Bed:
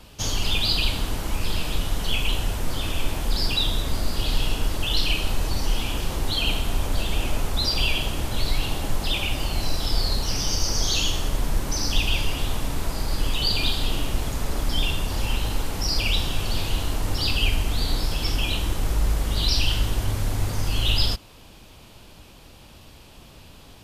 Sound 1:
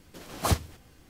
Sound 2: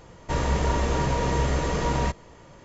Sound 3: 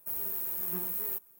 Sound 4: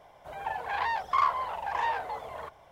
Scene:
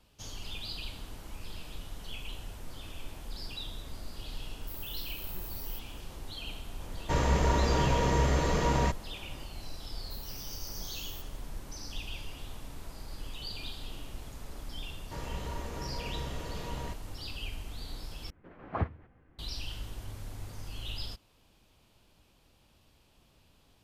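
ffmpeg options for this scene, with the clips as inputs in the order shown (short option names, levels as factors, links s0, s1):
-filter_complex "[3:a]asplit=2[s0][s1];[2:a]asplit=2[s2][s3];[0:a]volume=0.133[s4];[1:a]lowpass=f=2000:w=0.5412,lowpass=f=2000:w=1.3066[s5];[s4]asplit=2[s6][s7];[s6]atrim=end=18.304[s8];[s5]atrim=end=1.09,asetpts=PTS-STARTPTS,volume=0.501[s9];[s7]atrim=start=19.386[s10];[s0]atrim=end=1.39,asetpts=PTS-STARTPTS,volume=0.316,afade=t=in:d=0.004:c=hsin,afade=t=out:st=1.386:d=0.004:c=hsin,adelay=203301S[s11];[s2]atrim=end=2.64,asetpts=PTS-STARTPTS,volume=0.75,afade=t=in:d=0.004:c=hsin,afade=t=out:st=2.636:d=0.004:c=hsin,adelay=6800[s12];[s1]atrim=end=1.39,asetpts=PTS-STARTPTS,volume=0.2,afade=t=in:d=0.004:c=hsin,afade=t=out:st=1.386:d=0.004:c=hsin,adelay=10040[s13];[s3]atrim=end=2.64,asetpts=PTS-STARTPTS,volume=0.168,afade=t=in:d=0.004:c=hsin,afade=t=out:st=2.636:d=0.004:c=hsin,adelay=14820[s14];[s8][s9]acrossfade=d=0.004:c1=hsin:c2=hsin[s15];[s15][s10]acrossfade=d=0.004:c1=hsin:c2=hsin[s16];[s16][s11][s12][s13][s14]amix=inputs=5:normalize=0"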